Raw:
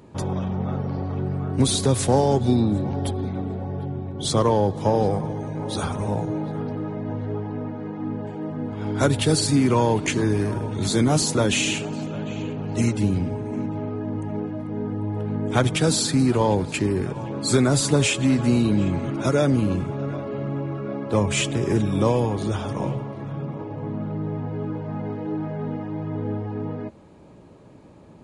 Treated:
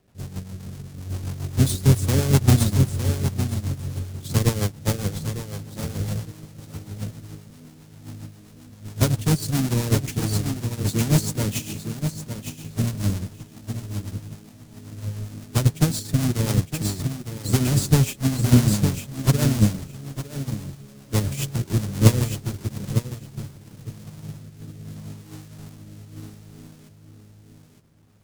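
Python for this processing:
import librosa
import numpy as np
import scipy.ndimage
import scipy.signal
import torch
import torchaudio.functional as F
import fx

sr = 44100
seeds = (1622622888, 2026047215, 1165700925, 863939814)

p1 = fx.halfwave_hold(x, sr)
p2 = fx.bass_treble(p1, sr, bass_db=10, treble_db=11)
p3 = fx.quant_dither(p2, sr, seeds[0], bits=6, dither='none')
p4 = fx.rotary_switch(p3, sr, hz=7.5, then_hz=0.65, switch_at_s=23.18)
p5 = p4 + fx.echo_feedback(p4, sr, ms=909, feedback_pct=25, wet_db=-4.5, dry=0)
p6 = fx.upward_expand(p5, sr, threshold_db=-18.0, expansion=2.5)
y = p6 * librosa.db_to_amplitude(-4.0)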